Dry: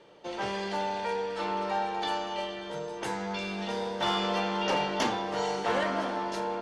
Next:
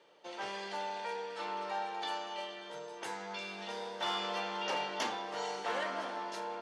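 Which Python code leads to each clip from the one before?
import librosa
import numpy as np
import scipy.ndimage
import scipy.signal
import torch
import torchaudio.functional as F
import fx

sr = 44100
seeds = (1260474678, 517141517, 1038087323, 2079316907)

y = fx.highpass(x, sr, hz=620.0, slope=6)
y = F.gain(torch.from_numpy(y), -5.0).numpy()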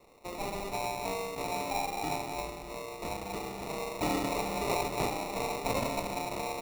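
y = fx.sample_hold(x, sr, seeds[0], rate_hz=1600.0, jitter_pct=0)
y = F.gain(torch.from_numpy(y), 4.5).numpy()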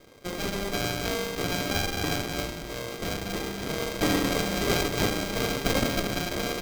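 y = fx.lower_of_two(x, sr, delay_ms=0.52)
y = F.gain(torch.from_numpy(y), 7.5).numpy()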